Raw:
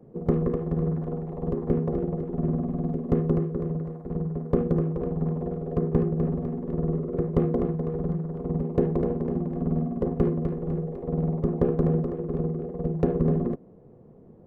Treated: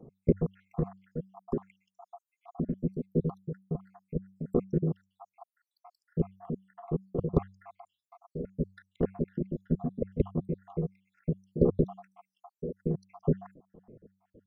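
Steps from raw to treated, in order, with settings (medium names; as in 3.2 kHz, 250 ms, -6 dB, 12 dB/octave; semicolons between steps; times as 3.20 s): random holes in the spectrogram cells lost 83%; de-hum 95.59 Hz, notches 2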